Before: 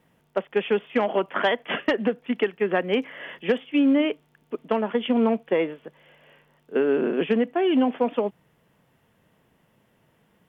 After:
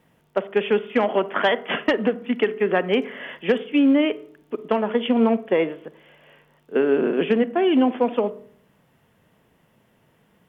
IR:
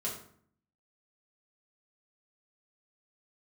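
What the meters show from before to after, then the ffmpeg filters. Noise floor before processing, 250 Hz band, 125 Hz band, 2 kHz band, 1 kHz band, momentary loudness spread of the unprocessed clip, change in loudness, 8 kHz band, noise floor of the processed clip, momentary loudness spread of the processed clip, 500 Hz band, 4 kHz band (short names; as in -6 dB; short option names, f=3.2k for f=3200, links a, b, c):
-65 dBFS, +2.5 dB, +2.5 dB, +2.5 dB, +2.5 dB, 10 LU, +2.5 dB, n/a, -62 dBFS, 10 LU, +2.5 dB, +2.5 dB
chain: -filter_complex "[0:a]asplit=2[a][b];[b]lowpass=2.3k[c];[1:a]atrim=start_sample=2205,adelay=43[d];[c][d]afir=irnorm=-1:irlink=0,volume=-18dB[e];[a][e]amix=inputs=2:normalize=0,volume=2.5dB"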